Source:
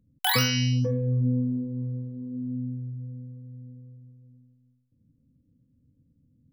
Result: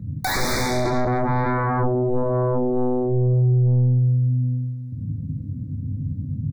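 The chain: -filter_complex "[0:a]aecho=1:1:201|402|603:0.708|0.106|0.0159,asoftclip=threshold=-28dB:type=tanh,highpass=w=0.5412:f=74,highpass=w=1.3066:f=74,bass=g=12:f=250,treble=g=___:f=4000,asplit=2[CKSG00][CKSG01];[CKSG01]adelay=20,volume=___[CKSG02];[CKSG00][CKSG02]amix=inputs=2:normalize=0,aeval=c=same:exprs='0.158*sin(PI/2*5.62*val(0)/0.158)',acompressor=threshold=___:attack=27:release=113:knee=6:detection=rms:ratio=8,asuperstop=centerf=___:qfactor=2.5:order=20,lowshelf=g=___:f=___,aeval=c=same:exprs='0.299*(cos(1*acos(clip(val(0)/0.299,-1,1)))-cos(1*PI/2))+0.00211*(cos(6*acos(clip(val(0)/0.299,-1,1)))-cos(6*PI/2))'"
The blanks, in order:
-10, -8.5dB, -22dB, 2900, 9.5, 180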